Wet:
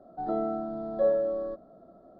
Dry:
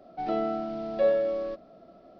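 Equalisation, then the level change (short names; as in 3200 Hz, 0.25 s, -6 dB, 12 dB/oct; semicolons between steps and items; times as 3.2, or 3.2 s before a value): Butterworth band-stop 2500 Hz, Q 1; air absorption 380 m; 0.0 dB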